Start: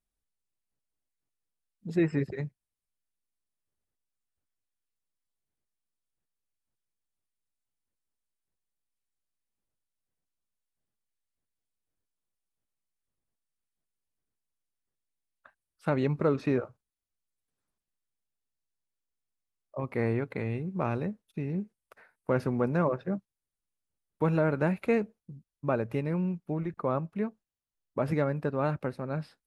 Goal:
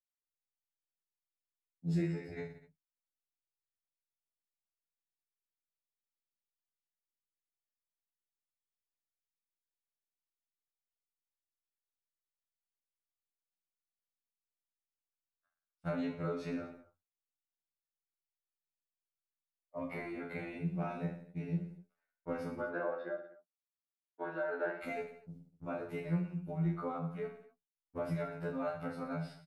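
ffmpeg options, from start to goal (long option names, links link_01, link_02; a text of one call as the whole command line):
ffmpeg -i in.wav -filter_complex "[0:a]agate=range=-30dB:threshold=-48dB:ratio=16:detection=peak,equalizer=frequency=510:width_type=o:width=2.7:gain=-2.5,aecho=1:1:1.4:0.33,acompressor=threshold=-35dB:ratio=6,asettb=1/sr,asplit=3[link_01][link_02][link_03];[link_01]atrim=end=22.594[link_04];[link_02]atrim=start=22.59:end=24.83,asetpts=PTS-STARTPTS,afade=type=in:duration=0.004:curve=qsin,afade=type=out:start_time=2.236:duration=0.004:curve=qsin,highpass=frequency=320:width=0.5412,highpass=frequency=320:width=1.3066,equalizer=frequency=370:width_type=q:width=4:gain=8,equalizer=frequency=620:width_type=q:width=4:gain=4,equalizer=frequency=1600:width_type=q:width=4:gain=9,equalizer=frequency=2400:width_type=q:width=4:gain=-8,lowpass=frequency=4000:width=0.5412,lowpass=frequency=4000:width=1.3066[link_05];[link_03]atrim=start=24.826[link_06];[link_04][link_05]acrossfade=duration=0.004:curve1=hsin:curve2=qsin[link_07];[link_07][link_06]acrossfade=duration=0.004:curve1=qsin:curve2=hsin,aecho=1:1:30|67.5|114.4|173|246.2:0.631|0.398|0.251|0.158|0.1,afftfilt=real='re*2*eq(mod(b,4),0)':imag='im*2*eq(mod(b,4),0)':win_size=2048:overlap=0.75,volume=1dB" out.wav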